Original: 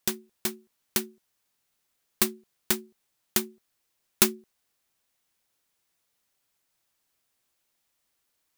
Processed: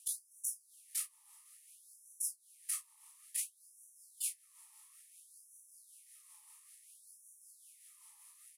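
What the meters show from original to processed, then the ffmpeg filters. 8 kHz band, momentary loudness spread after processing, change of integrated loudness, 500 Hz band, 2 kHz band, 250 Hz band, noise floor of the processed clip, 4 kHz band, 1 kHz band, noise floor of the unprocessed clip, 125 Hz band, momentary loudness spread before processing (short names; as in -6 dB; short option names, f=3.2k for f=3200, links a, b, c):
-6.0 dB, 19 LU, -12.0 dB, under -40 dB, -22.0 dB, under -40 dB, -68 dBFS, -19.0 dB, -26.5 dB, -77 dBFS, under -40 dB, 13 LU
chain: -filter_complex "[0:a]afftfilt=real='re*lt(hypot(re,im),0.0282)':imag='im*lt(hypot(re,im),0.0282)':win_size=1024:overlap=0.75,equalizer=f=10k:t=o:w=0.3:g=14.5,tremolo=f=5.2:d=0.45,acompressor=threshold=-50dB:ratio=5,flanger=delay=16:depth=4.8:speed=0.48,equalizer=f=500:t=o:w=1:g=9,equalizer=f=1k:t=o:w=1:g=7,equalizer=f=4k:t=o:w=1:g=-4,equalizer=f=8k:t=o:w=1:g=4,aeval=exprs='val(0)*sin(2*PI*280*n/s)':c=same,asuperstop=centerf=1500:order=4:qfactor=2.9,asplit=2[a][b];[b]adelay=33,volume=-9dB[c];[a][c]amix=inputs=2:normalize=0,aresample=32000,aresample=44100,afftfilt=real='re*gte(b*sr/1024,800*pow(5600/800,0.5+0.5*sin(2*PI*0.58*pts/sr)))':imag='im*gte(b*sr/1024,800*pow(5600/800,0.5+0.5*sin(2*PI*0.58*pts/sr)))':win_size=1024:overlap=0.75,volume=18dB"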